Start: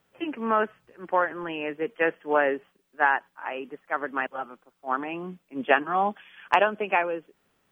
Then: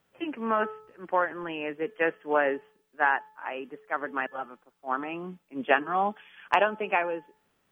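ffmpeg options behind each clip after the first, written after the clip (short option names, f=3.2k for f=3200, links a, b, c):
-af "bandreject=f=432.4:t=h:w=4,bandreject=f=864.8:t=h:w=4,bandreject=f=1.2972k:t=h:w=4,bandreject=f=1.7296k:t=h:w=4,volume=-2dB"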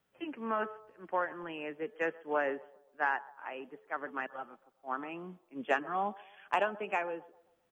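-filter_complex "[0:a]acrossover=split=420|2100[a][b][c];[b]asplit=2[d][e];[e]adelay=132,lowpass=f=1k:p=1,volume=-16dB,asplit=2[f][g];[g]adelay=132,lowpass=f=1k:p=1,volume=0.51,asplit=2[h][i];[i]adelay=132,lowpass=f=1k:p=1,volume=0.51,asplit=2[j][k];[k]adelay=132,lowpass=f=1k:p=1,volume=0.51,asplit=2[l][m];[m]adelay=132,lowpass=f=1k:p=1,volume=0.51[n];[d][f][h][j][l][n]amix=inputs=6:normalize=0[o];[c]asoftclip=type=tanh:threshold=-26.5dB[p];[a][o][p]amix=inputs=3:normalize=0,volume=-7dB"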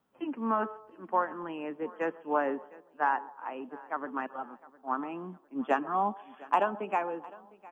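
-af "equalizer=f=250:t=o:w=1:g=11,equalizer=f=1k:t=o:w=1:g=10,equalizer=f=2k:t=o:w=1:g=-4,aecho=1:1:707|1414|2121:0.0841|0.032|0.0121,volume=-2.5dB"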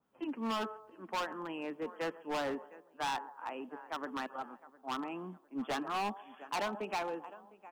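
-af "asoftclip=type=hard:threshold=-29dB,adynamicequalizer=threshold=0.00316:dfrequency=2200:dqfactor=0.7:tfrequency=2200:tqfactor=0.7:attack=5:release=100:ratio=0.375:range=3:mode=boostabove:tftype=highshelf,volume=-3dB"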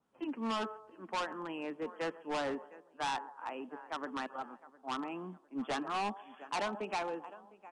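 -af "aresample=22050,aresample=44100"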